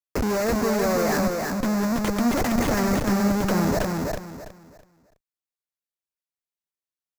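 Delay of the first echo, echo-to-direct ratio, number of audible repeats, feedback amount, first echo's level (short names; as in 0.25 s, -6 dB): 0.329 s, -3.0 dB, 3, 27%, -3.5 dB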